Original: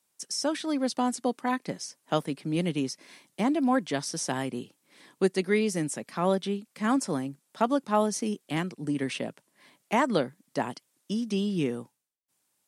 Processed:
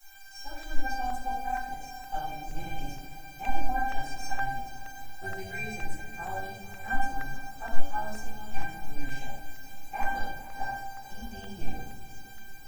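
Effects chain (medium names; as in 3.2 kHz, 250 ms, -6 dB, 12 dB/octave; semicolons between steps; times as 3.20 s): level rider gain up to 11 dB; in parallel at -10 dB: sample-rate reducer 8.3 kHz; on the sum: AM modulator 290 Hz, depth 50%; word length cut 6-bit, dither triangular; feedback comb 790 Hz, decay 0.32 s, mix 100%; echo that smears into a reverb 476 ms, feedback 57%, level -13.5 dB; reverberation RT60 0.80 s, pre-delay 6 ms, DRR -9 dB; crackling interface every 0.47 s, samples 64, repeat, from 0.63 s; trim -3 dB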